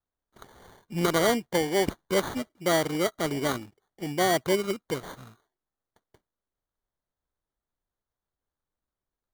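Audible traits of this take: aliases and images of a low sample rate 2600 Hz, jitter 0%

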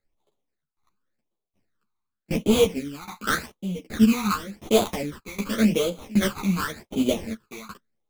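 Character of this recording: aliases and images of a low sample rate 2800 Hz, jitter 20%; phasing stages 12, 0.89 Hz, lowest notch 530–1800 Hz; tremolo saw down 1.3 Hz, depth 95%; a shimmering, thickened sound

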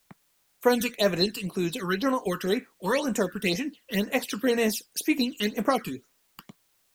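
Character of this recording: phasing stages 12, 2 Hz, lowest notch 640–4600 Hz; a quantiser's noise floor 12-bit, dither triangular

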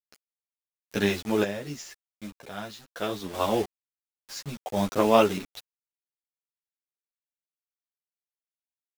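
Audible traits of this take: a quantiser's noise floor 6-bit, dither none; random-step tremolo 2.1 Hz, depth 80%; a shimmering, thickened sound

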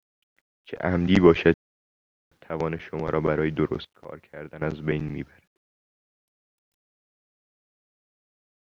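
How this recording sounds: random-step tremolo 1.3 Hz, depth 100%; a quantiser's noise floor 12-bit, dither none

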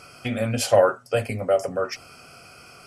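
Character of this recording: noise floor -48 dBFS; spectral tilt -4.5 dB/oct

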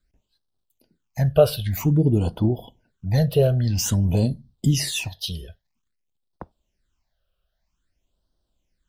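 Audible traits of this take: phasing stages 8, 0.51 Hz, lowest notch 260–2300 Hz

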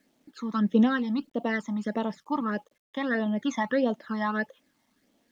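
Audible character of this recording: phasing stages 12, 1.6 Hz, lowest notch 460–1700 Hz; a quantiser's noise floor 12-bit, dither none

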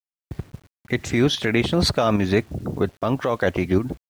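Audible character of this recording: tremolo saw up 3.7 Hz, depth 55%; a quantiser's noise floor 10-bit, dither none

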